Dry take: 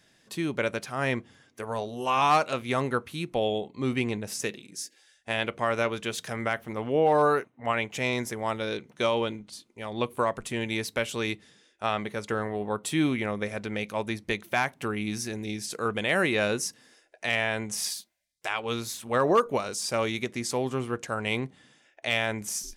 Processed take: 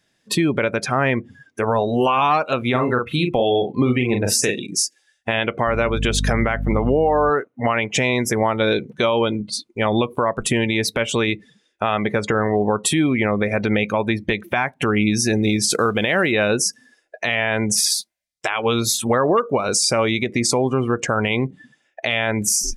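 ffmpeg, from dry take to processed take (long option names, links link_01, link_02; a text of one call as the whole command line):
ffmpeg -i in.wav -filter_complex "[0:a]asettb=1/sr,asplit=3[link_01][link_02][link_03];[link_01]atrim=end=2.704[link_04];[link_02]atrim=start=2.7:end=4.66,asetpts=PTS-STARTPTS,afade=type=in:duration=0.004:curve=qsin,afade=type=out:start_time=1.956:duration=0.004:curve=qsin,asplit=2[link_05][link_06];[link_06]adelay=40,volume=-5dB[link_07];[link_05][link_07]amix=inputs=2:normalize=0,atrim=end_sample=86436[link_08];[link_03]atrim=start=4.656[link_09];[link_04][link_08]acrossfade=duration=0.004:curve1=hsin:curve2=qsin[link_10];[link_10][link_09]acrossfade=duration=0.004:curve1=qsin:curve2=hsin,asettb=1/sr,asplit=3[link_11][link_12][link_13];[link_11]atrim=end=5.674[link_14];[link_12]atrim=start=5.67:end=7.3,asetpts=PTS-STARTPTS,afade=type=in:duration=0.004:curve=qsin,afade=type=out:start_time=1.626:duration=0.004:curve=qsin,aeval=exprs='val(0)+0.0178*(sin(2*PI*50*n/s)+sin(2*PI*2*50*n/s)/2+sin(2*PI*3*50*n/s)/3+sin(2*PI*4*50*n/s)/4+sin(2*PI*5*50*n/s)/5)':channel_layout=same[link_15];[link_13]atrim=start=7.296[link_16];[link_14][link_15]acrossfade=duration=0.004:curve1=hsin:curve2=qsin[link_17];[link_17][link_16]acrossfade=duration=0.004:curve1=qsin:curve2=hsin,asplit=3[link_18][link_19][link_20];[link_18]afade=type=out:start_time=15.42:duration=0.02[link_21];[link_19]acrusher=bits=4:mode=log:mix=0:aa=0.000001,afade=type=in:start_time=15.42:duration=0.02,afade=type=out:start_time=16.31:duration=0.02[link_22];[link_20]afade=type=in:start_time=16.31:duration=0.02[link_23];[link_21][link_22][link_23]amix=inputs=3:normalize=0,acompressor=threshold=-32dB:ratio=20,afftdn=noise_reduction=23:noise_floor=-47,alimiter=level_in=26dB:limit=-1dB:release=50:level=0:latency=1,volume=-7dB" out.wav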